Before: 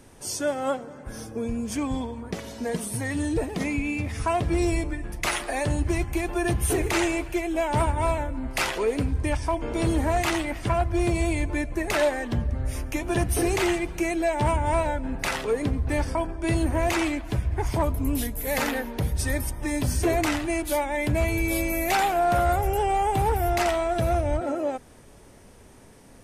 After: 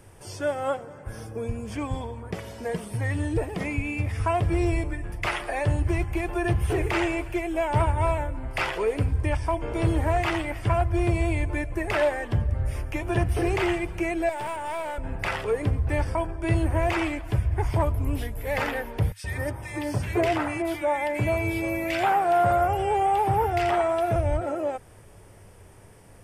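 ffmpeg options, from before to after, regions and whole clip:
ffmpeg -i in.wav -filter_complex "[0:a]asettb=1/sr,asplit=3[link_01][link_02][link_03];[link_01]atrim=end=14.294[link_04];[link_02]atrim=start=14.29:end=14.98,asetpts=PTS-STARTPTS,afade=type=in:duration=0.004:curve=qsin,afade=type=out:start_time=0.686:duration=0.004:curve=qsin,highpass=300,aemphasis=mode=production:type=50kf,aeval=exprs='(tanh(25.1*val(0)+0.35)-tanh(0.35))/25.1':channel_layout=same[link_05];[link_03]atrim=start=14.976[link_06];[link_04][link_05]acrossfade=duration=0.004:curve1=hsin:curve2=qsin[link_07];[link_07][link_06]acrossfade=duration=0.004:curve1=qsin:curve2=hsin,asettb=1/sr,asplit=3[link_08][link_09][link_10];[link_08]atrim=end=19.124[link_11];[link_09]atrim=start=19.12:end=24.16,asetpts=PTS-STARTPTS,afade=type=in:duration=0.004:curve=qsin,afade=type=out:start_time=5.036:duration=0.004:curve=qsin,highpass=110,equalizer=frequency=1200:width_type=o:width=2.3:gain=2.5,acrossover=split=1800[link_12][link_13];[link_12]adelay=120[link_14];[link_14][link_13]amix=inputs=2:normalize=0,atrim=end_sample=222264[link_15];[link_10]atrim=start=24.156[link_16];[link_11][link_15]acrossfade=duration=0.004:curve1=hsin:curve2=qsin[link_17];[link_17][link_16]acrossfade=duration=0.004:curve1=qsin:curve2=hsin,acrossover=split=5000[link_18][link_19];[link_19]acompressor=threshold=-48dB:ratio=4:attack=1:release=60[link_20];[link_18][link_20]amix=inputs=2:normalize=0,equalizer=frequency=100:width_type=o:width=0.33:gain=9,equalizer=frequency=250:width_type=o:width=0.33:gain=-11,equalizer=frequency=4000:width_type=o:width=0.33:gain=-8,equalizer=frequency=6300:width_type=o:width=0.33:gain=-6" out.wav

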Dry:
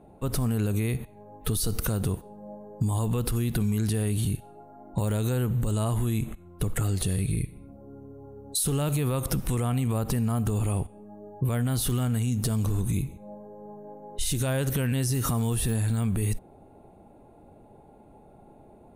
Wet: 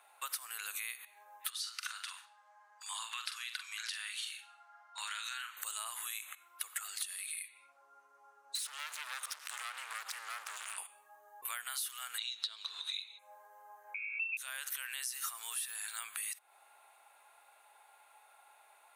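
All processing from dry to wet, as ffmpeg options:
ffmpeg -i in.wav -filter_complex "[0:a]asettb=1/sr,asplit=3[link_01][link_02][link_03];[link_01]atrim=end=1.504[link_04];[link_02]atrim=start=1.5:end=5.57,asetpts=PTS-STARTPTS,afade=type=in:duration=0.004:curve=qsin,afade=type=out:start_time=4.066:duration=0.004:curve=qsin,asuperpass=centerf=2600:order=4:qfactor=0.56,asplit=2[link_05][link_06];[link_06]adelay=43,volume=-7dB[link_07];[link_05][link_07]amix=inputs=2:normalize=0,atrim=end_sample=179487[link_08];[link_03]atrim=start=5.566[link_09];[link_04][link_08]acrossfade=duration=0.004:curve1=hsin:curve2=qsin[link_10];[link_10][link_09]acrossfade=duration=0.004:curve1=qsin:curve2=hsin,asettb=1/sr,asplit=3[link_11][link_12][link_13];[link_11]atrim=end=7.484[link_14];[link_12]atrim=start=7.48:end=10.78,asetpts=PTS-STARTPTS,afade=type=in:duration=0.004:curve=qsin,afade=type=out:start_time=3.296:duration=0.004:curve=qsin,lowpass=7000,volume=33.5dB,asoftclip=hard,volume=-33.5dB[link_15];[link_13]atrim=start=10.776[link_16];[link_14][link_15]acrossfade=duration=0.004:curve1=hsin:curve2=qsin[link_17];[link_17][link_16]acrossfade=duration=0.004:curve1=qsin:curve2=hsin,asettb=1/sr,asplit=3[link_18][link_19][link_20];[link_18]atrim=end=12.184[link_21];[link_19]atrim=start=12.18:end=13.19,asetpts=PTS-STARTPTS,afade=type=in:duration=0.004:curve=qsin,afade=type=out:start_time=1.006:duration=0.004:curve=qsin,lowpass=frequency=3900:width_type=q:width=15,equalizer=frequency=470:width_type=o:width=1.2:gain=6[link_22];[link_20]atrim=start=13.186[link_23];[link_21][link_22]acrossfade=duration=0.004:curve1=hsin:curve2=qsin[link_24];[link_24][link_23]acrossfade=duration=0.004:curve1=qsin:curve2=hsin,asettb=1/sr,asplit=3[link_25][link_26][link_27];[link_25]atrim=end=13.944[link_28];[link_26]atrim=start=13.94:end=14.37,asetpts=PTS-STARTPTS,afade=type=in:duration=0.004:curve=qsin,afade=type=out:start_time=0.426:duration=0.004:curve=qsin,asuperstop=centerf=760:order=8:qfactor=1.2,aemphasis=mode=production:type=75kf,lowpass=frequency=2300:width_type=q:width=0.5098,lowpass=frequency=2300:width_type=q:width=0.6013,lowpass=frequency=2300:width_type=q:width=0.9,lowpass=frequency=2300:width_type=q:width=2.563,afreqshift=-2700[link_29];[link_27]atrim=start=14.366[link_30];[link_28][link_29]acrossfade=duration=0.004:curve1=hsin:curve2=qsin[link_31];[link_31][link_30]acrossfade=duration=0.004:curve1=qsin:curve2=hsin,highpass=frequency=1300:width=0.5412,highpass=frequency=1300:width=1.3066,acompressor=threshold=-48dB:ratio=6,volume=10dB" out.wav

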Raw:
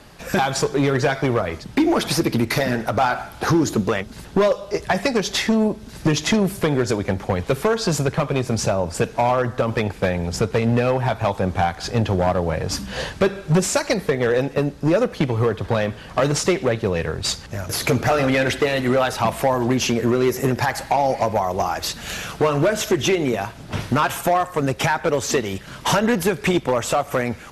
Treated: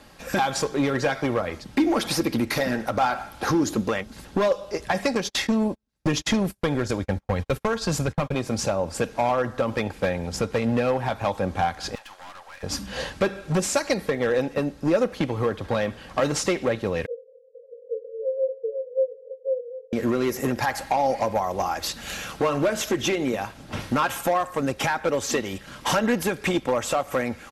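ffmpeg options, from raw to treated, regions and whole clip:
ffmpeg -i in.wav -filter_complex "[0:a]asettb=1/sr,asplit=3[link_01][link_02][link_03];[link_01]atrim=end=5.154[link_04];[link_02]atrim=start=5.15:end=8.35,asetpts=PTS-STARTPTS,afade=type=in:duration=0.004:curve=qsin,afade=type=out:start_time=3.196:duration=0.004:curve=qsin,agate=range=-40dB:threshold=-27dB:ratio=16:release=100:detection=peak,asubboost=boost=3:cutoff=170[link_05];[link_03]atrim=start=8.346[link_06];[link_04][link_05]acrossfade=duration=0.004:curve1=hsin:curve2=qsin[link_07];[link_07][link_06]acrossfade=duration=0.004:curve1=qsin:curve2=hsin,asettb=1/sr,asplit=3[link_08][link_09][link_10];[link_08]atrim=end=11.954[link_11];[link_09]atrim=start=11.95:end=12.63,asetpts=PTS-STARTPTS,afade=type=in:duration=0.004:curve=qsin,afade=type=out:start_time=0.676:duration=0.004:curve=qsin,highpass=frequency=1000:width=0.5412,highpass=frequency=1000:width=1.3066,aeval=exprs='(tanh(56.2*val(0)+0.55)-tanh(0.55))/56.2':channel_layout=same[link_12];[link_10]atrim=start=12.626[link_13];[link_11][link_12]acrossfade=duration=0.004:curve1=hsin:curve2=qsin[link_14];[link_14][link_13]acrossfade=duration=0.004:curve1=qsin:curve2=hsin,asettb=1/sr,asplit=3[link_15][link_16][link_17];[link_15]atrim=end=17.064[link_18];[link_16]atrim=start=17.06:end=19.93,asetpts=PTS-STARTPTS,afade=type=in:duration=0.004:curve=qsin,afade=type=out:start_time=2.866:duration=0.004:curve=qsin,asuperpass=centerf=490:order=20:qfactor=4.6,asplit=2[link_19][link_20];[link_20]adelay=23,volume=-6dB[link_21];[link_19][link_21]amix=inputs=2:normalize=0,atrim=end_sample=126567[link_22];[link_17]atrim=start=19.926[link_23];[link_18][link_22]acrossfade=duration=0.004:curve1=hsin:curve2=qsin[link_24];[link_24][link_23]acrossfade=duration=0.004:curve1=qsin:curve2=hsin,lowshelf=frequency=140:gain=-3,aecho=1:1:3.7:0.3,volume=-4dB" out.wav

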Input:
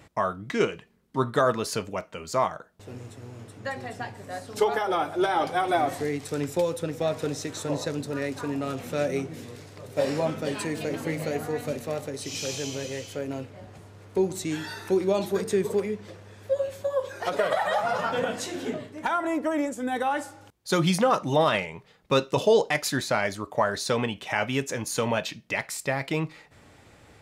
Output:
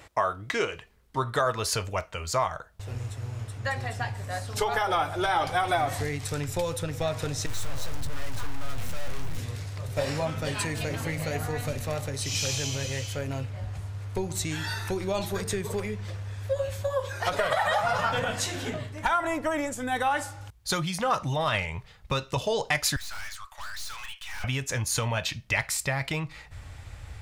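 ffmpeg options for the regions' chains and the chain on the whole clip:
ffmpeg -i in.wav -filter_complex "[0:a]asettb=1/sr,asplit=3[link_01][link_02][link_03];[link_01]atrim=end=7.464[link_04];[link_02]atrim=start=7.46:end=9.38,asetpts=PTS-STARTPTS,afade=type=in:duration=0.004:curve=qsin,afade=type=out:start_time=1.916:duration=0.004:curve=qsin,aeval=exprs='val(0)+0.5*0.0112*sgn(val(0))':channel_layout=same,aeval=exprs='(tanh(89.1*val(0)+0.55)-tanh(0.55))/89.1':channel_layout=same[link_05];[link_03]atrim=start=9.376[link_06];[link_04][link_05]acrossfade=duration=0.004:curve1=hsin:curve2=qsin[link_07];[link_07][link_06]acrossfade=duration=0.004:curve1=qsin:curve2=hsin,asettb=1/sr,asplit=3[link_08][link_09][link_10];[link_08]atrim=end=22.964[link_11];[link_09]atrim=start=22.96:end=24.44,asetpts=PTS-STARTPTS,afade=type=in:duration=0.004:curve=qsin,afade=type=out:start_time=1.476:duration=0.004:curve=qsin,highpass=frequency=1100:width=0.5412,highpass=frequency=1100:width=1.3066,aeval=exprs='(tanh(126*val(0)+0.15)-tanh(0.15))/126':channel_layout=same[link_12];[link_10]atrim=start=24.436[link_13];[link_11][link_12]acrossfade=duration=0.004:curve1=hsin:curve2=qsin[link_14];[link_14][link_13]acrossfade=duration=0.004:curve1=qsin:curve2=hsin,asubboost=boost=9.5:cutoff=120,acompressor=threshold=-24dB:ratio=5,equalizer=frequency=190:width=0.84:gain=-12.5,volume=5dB" out.wav

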